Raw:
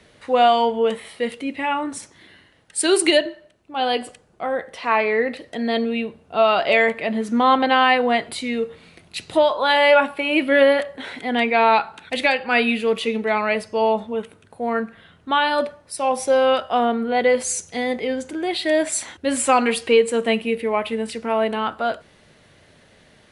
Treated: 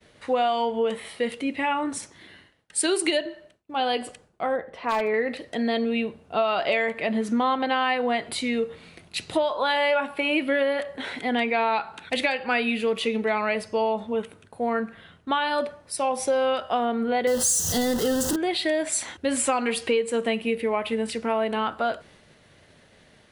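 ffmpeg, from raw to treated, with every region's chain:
ffmpeg -i in.wav -filter_complex "[0:a]asettb=1/sr,asplit=3[link_01][link_02][link_03];[link_01]atrim=end=4.564[link_04];[link_02]atrim=start=4.56:end=5.14,asetpts=PTS-STARTPTS,afade=type=in:duration=0.004:curve=qsin,afade=type=out:start_time=0.576:duration=0.004:curve=qsin,lowpass=frequency=1100:poles=1,aeval=exprs='0.188*(abs(mod(val(0)/0.188+3,4)-2)-1)':channel_layout=same[link_05];[link_03]atrim=start=5.136[link_06];[link_04][link_05]acrossfade=duration=0.004:curve1=hsin:curve2=qsin[link_07];[link_07][link_06]acrossfade=duration=0.004:curve1=qsin:curve2=hsin,asettb=1/sr,asplit=3[link_08][link_09][link_10];[link_08]atrim=end=17.274[link_11];[link_09]atrim=start=17.27:end=18.36,asetpts=PTS-STARTPTS,afade=type=in:duration=0.004:curve=qsin,afade=type=out:start_time=1.086:duration=0.004:curve=qsin,aeval=exprs='val(0)+0.5*0.0668*sgn(val(0))':channel_layout=same,asuperstop=centerf=2300:order=4:qfactor=2.6,bass=frequency=250:gain=7,treble=frequency=4000:gain=8[link_12];[link_10]atrim=start=18.356[link_13];[link_11][link_12]acrossfade=duration=0.004:curve1=hsin:curve2=qsin[link_14];[link_14][link_13]acrossfade=duration=0.004:curve1=qsin:curve2=hsin,agate=range=-33dB:threshold=-49dB:ratio=3:detection=peak,acompressor=threshold=-21dB:ratio=4" out.wav

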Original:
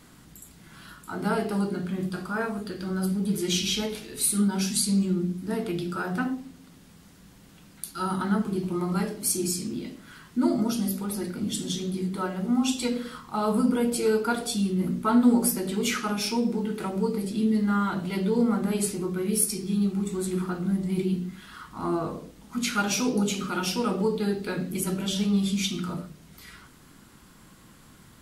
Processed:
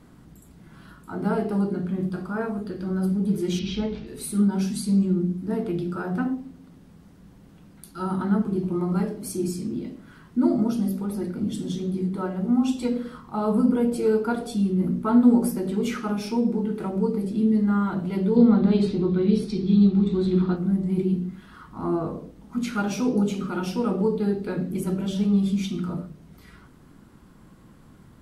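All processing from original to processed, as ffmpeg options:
ffmpeg -i in.wav -filter_complex "[0:a]asettb=1/sr,asplit=3[link_01][link_02][link_03];[link_01]atrim=end=3.594[link_04];[link_02]atrim=start=3.59:end=4.07,asetpts=PTS-STARTPTS,afade=type=in:duration=0.004:curve=qsin,afade=type=out:start_time=0.476:duration=0.004:curve=qsin,lowpass=frequency=5100:width=0.5412,lowpass=frequency=5100:width=1.3066,asubboost=boost=12:cutoff=230[link_05];[link_03]atrim=start=4.066[link_06];[link_04][link_05]acrossfade=duration=0.004:curve1=hsin:curve2=qsin[link_07];[link_07][link_06]acrossfade=duration=0.004:curve1=qsin:curve2=hsin,asettb=1/sr,asplit=3[link_08][link_09][link_10];[link_08]atrim=end=18.364[link_11];[link_09]atrim=start=18.36:end=20.56,asetpts=PTS-STARTPTS,afade=type=in:duration=0.004:curve=qsin,afade=type=out:start_time=2.196:duration=0.004:curve=qsin,lowpass=frequency=3900:width_type=q:width=5.2,lowshelf=frequency=480:gain=5.5[link_12];[link_10]atrim=start=20.556[link_13];[link_11][link_12]acrossfade=duration=0.004:curve1=hsin:curve2=qsin[link_14];[link_14][link_13]acrossfade=duration=0.004:curve1=qsin:curve2=hsin,tiltshelf=frequency=1400:gain=7,bandreject=frequency=7100:width=27,volume=-3.5dB" out.wav

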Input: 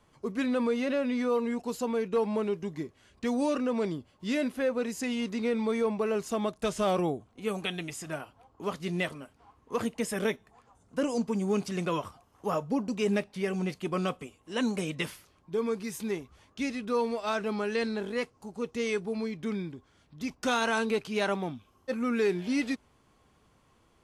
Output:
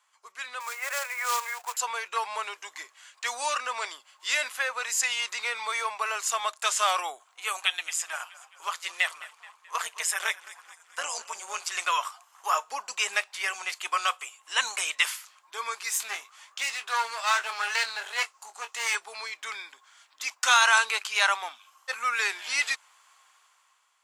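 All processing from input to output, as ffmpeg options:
ffmpeg -i in.wav -filter_complex "[0:a]asettb=1/sr,asplit=3[link_01][link_02][link_03];[link_01]atrim=end=0.604[link_04];[link_02]atrim=start=0.6:end=1.77,asetpts=PTS-STARTPTS,afade=type=in:duration=0.004:curve=qsin,afade=type=out:start_time=1.166:duration=0.004:curve=qsin,asuperpass=centerf=1100:order=20:qfactor=0.54,acrusher=bits=3:mode=log:mix=0:aa=0.000001[link_05];[link_03]atrim=start=1.766[link_06];[link_04][link_05]acrossfade=duration=0.004:curve1=hsin:curve2=qsin[link_07];[link_07][link_06]acrossfade=duration=0.004:curve1=qsin:curve2=hsin,asettb=1/sr,asplit=3[link_08][link_09][link_10];[link_08]atrim=end=7.604[link_11];[link_09]atrim=start=7.6:end=11.71,asetpts=PTS-STARTPTS,afade=type=in:duration=0.004:curve=qsin,afade=type=out:start_time=4.106:duration=0.004:curve=qsin,tremolo=f=170:d=0.667,asplit=6[link_12][link_13][link_14][link_15][link_16][link_17];[link_13]adelay=214,afreqshift=-42,volume=-18.5dB[link_18];[link_14]adelay=428,afreqshift=-84,volume=-23.9dB[link_19];[link_15]adelay=642,afreqshift=-126,volume=-29.2dB[link_20];[link_16]adelay=856,afreqshift=-168,volume=-34.6dB[link_21];[link_17]adelay=1070,afreqshift=-210,volume=-39.9dB[link_22];[link_12][link_18][link_19][link_20][link_21][link_22]amix=inputs=6:normalize=0,atrim=end_sample=181251[link_23];[link_10]atrim=start=11.706[link_24];[link_11][link_23]acrossfade=duration=0.004:curve1=hsin:curve2=qsin[link_25];[link_25][link_24]acrossfade=duration=0.004:curve1=qsin:curve2=hsin,asettb=1/sr,asplit=3[link_26][link_27][link_28];[link_26]atrim=end=15.904[link_29];[link_27]atrim=start=15.9:end=18.95,asetpts=PTS-STARTPTS,afade=type=in:duration=0.004:curve=qsin,afade=type=out:start_time=3.046:duration=0.004:curve=qsin,aeval=exprs='clip(val(0),-1,0.0158)':channel_layout=same,asplit=2[link_30][link_31];[link_31]adelay=22,volume=-9dB[link_32];[link_30][link_32]amix=inputs=2:normalize=0,atrim=end_sample=134505[link_33];[link_28]atrim=start=18.946[link_34];[link_29][link_33]acrossfade=duration=0.004:curve1=hsin:curve2=qsin[link_35];[link_35][link_34]acrossfade=duration=0.004:curve1=qsin:curve2=hsin,highpass=frequency=980:width=0.5412,highpass=frequency=980:width=1.3066,equalizer=frequency=7300:width=4:gain=7.5,dynaudnorm=framelen=180:gausssize=9:maxgain=11dB" out.wav

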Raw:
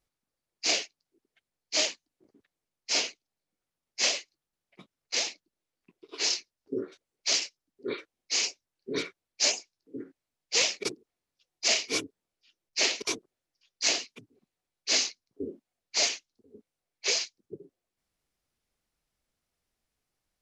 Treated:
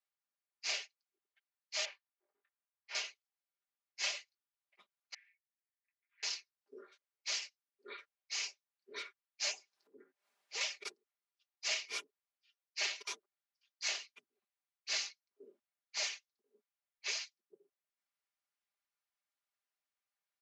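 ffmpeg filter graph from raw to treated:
ffmpeg -i in.wav -filter_complex "[0:a]asettb=1/sr,asplit=3[link_01][link_02][link_03];[link_01]atrim=end=1.854[link_04];[link_02]atrim=start=1.85:end=2.95,asetpts=PTS-STARTPTS,afade=type=in:duration=0.004:curve=qsin,afade=type=out:start_time=1.096:duration=0.004:curve=qsin,highpass=440,lowpass=2300,asplit=2[link_05][link_06];[link_06]adelay=22,volume=-6dB[link_07];[link_05][link_07]amix=inputs=2:normalize=0,atrim=end_sample=48510[link_08];[link_03]atrim=start=2.946[link_09];[link_04][link_08]acrossfade=duration=0.004:curve1=hsin:curve2=qsin[link_10];[link_10][link_09]acrossfade=duration=0.004:curve1=qsin:curve2=hsin,asettb=1/sr,asplit=3[link_11][link_12][link_13];[link_11]atrim=end=5.144[link_14];[link_12]atrim=start=5.14:end=6.23,asetpts=PTS-STARTPTS,afade=type=in:duration=0.004:curve=qsin,afade=type=out:start_time=1.086:duration=0.004:curve=qsin,aecho=1:1:6.2:0.46,atrim=end_sample=48069,acompressor=threshold=-55dB:ratio=2:attack=3.2:release=140:knee=1:detection=peak,asuperpass=centerf=1900:order=4:qfactor=3.6[link_15];[link_13]atrim=start=6.226[link_16];[link_14][link_15]acrossfade=duration=0.004:curve1=hsin:curve2=qsin[link_17];[link_17][link_16]acrossfade=duration=0.004:curve1=qsin:curve2=hsin,asettb=1/sr,asplit=3[link_18][link_19][link_20];[link_18]atrim=end=9.534[link_21];[link_19]atrim=start=9.53:end=10.61,asetpts=PTS-STARTPTS,afade=type=in:duration=0.004:curve=qsin,afade=type=out:start_time=1.076:duration=0.004:curve=qsin,tiltshelf=frequency=700:gain=6,acompressor=mode=upward:threshold=-41dB:ratio=2.5:attack=3.2:release=140:knee=2.83:detection=peak[link_22];[link_20]atrim=start=10.606[link_23];[link_21][link_22]acrossfade=duration=0.004:curve1=hsin:curve2=qsin[link_24];[link_24][link_23]acrossfade=duration=0.004:curve1=qsin:curve2=hsin,highpass=1200,highshelf=frequency=2600:gain=-11.5,aecho=1:1:5:0.6,volume=-4dB" out.wav

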